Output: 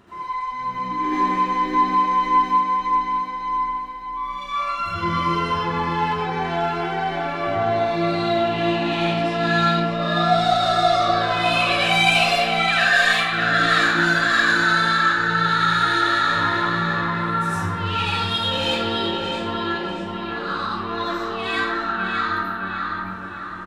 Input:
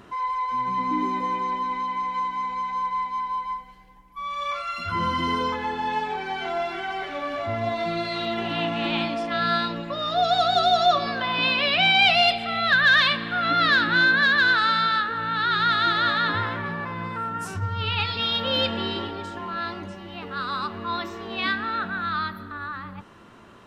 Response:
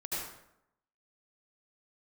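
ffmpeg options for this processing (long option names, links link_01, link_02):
-filter_complex "[0:a]asettb=1/sr,asplit=3[link_01][link_02][link_03];[link_01]atrim=end=1.044[link_04];[link_02]atrim=start=1.04:end=2.5,asetpts=PTS-STARTPTS,afade=type=in:duration=0.004:curve=qsin,afade=type=out:start_time=1.456:duration=0.004:curve=qsin,acontrast=55[link_05];[link_03]atrim=start=2.496[link_06];[link_04][link_05]acrossfade=duration=0.004:curve1=hsin:curve2=qsin[link_07];[link_07][link_06]acrossfade=duration=0.004:curve1=qsin:curve2=hsin,asettb=1/sr,asplit=3[link_08][link_09][link_10];[link_08]atrim=end=12.544[link_11];[link_09]atrim=start=12.54:end=13.25,asetpts=PTS-STARTPTS,afade=type=in:duration=0.004:curve=qsin,afade=type=out:start_time=0.706:duration=0.004:curve=qsin,highpass=930[link_12];[link_10]atrim=start=13.246[link_13];[link_11][link_12]acrossfade=duration=0.004:curve1=hsin:curve2=qsin[link_14];[link_14][link_13]acrossfade=duration=0.004:curve1=qsin:curve2=hsin,asoftclip=type=tanh:threshold=-16dB,asplit=2[link_15][link_16];[link_16]adelay=609,lowpass=frequency=4100:poles=1,volume=-4dB,asplit=2[link_17][link_18];[link_18]adelay=609,lowpass=frequency=4100:poles=1,volume=0.46,asplit=2[link_19][link_20];[link_20]adelay=609,lowpass=frequency=4100:poles=1,volume=0.46,asplit=2[link_21][link_22];[link_22]adelay=609,lowpass=frequency=4100:poles=1,volume=0.46,asplit=2[link_23][link_24];[link_24]adelay=609,lowpass=frequency=4100:poles=1,volume=0.46,asplit=2[link_25][link_26];[link_26]adelay=609,lowpass=frequency=4100:poles=1,volume=0.46[link_27];[link_15][link_17][link_19][link_21][link_23][link_25][link_27]amix=inputs=7:normalize=0[link_28];[1:a]atrim=start_sample=2205[link_29];[link_28][link_29]afir=irnorm=-1:irlink=0"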